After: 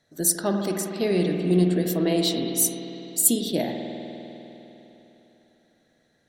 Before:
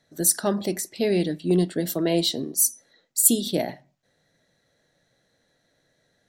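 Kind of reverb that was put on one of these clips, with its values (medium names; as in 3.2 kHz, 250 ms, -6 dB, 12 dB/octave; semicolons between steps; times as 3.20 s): spring tank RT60 3.5 s, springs 50 ms, chirp 70 ms, DRR 2.5 dB; trim -1.5 dB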